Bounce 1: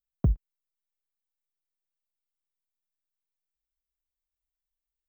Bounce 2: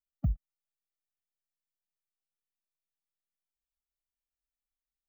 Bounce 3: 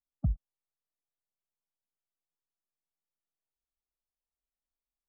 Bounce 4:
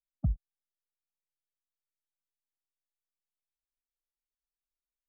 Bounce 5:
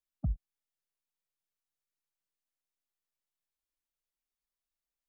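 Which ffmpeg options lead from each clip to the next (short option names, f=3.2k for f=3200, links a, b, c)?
-af "afftfilt=real='re*eq(mod(floor(b*sr/1024/280),2),0)':imag='im*eq(mod(floor(b*sr/1024/280),2),0)':win_size=1024:overlap=0.75,volume=-5.5dB"
-af "lowpass=f=1.2k:w=0.5412,lowpass=f=1.2k:w=1.3066"
-af "anlmdn=0.0000251"
-af "alimiter=limit=-23.5dB:level=0:latency=1:release=113"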